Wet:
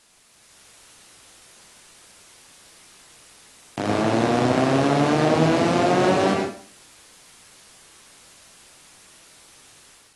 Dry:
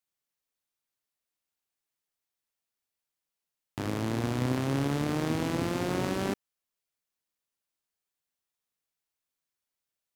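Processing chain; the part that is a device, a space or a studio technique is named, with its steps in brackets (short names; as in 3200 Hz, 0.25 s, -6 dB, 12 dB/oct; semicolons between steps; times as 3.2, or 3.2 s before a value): filmed off a television (BPF 150–7600 Hz; bell 670 Hz +9 dB 0.46 oct; reverb RT60 0.45 s, pre-delay 86 ms, DRR 0 dB; white noise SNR 23 dB; AGC gain up to 7 dB; AAC 32 kbps 24000 Hz)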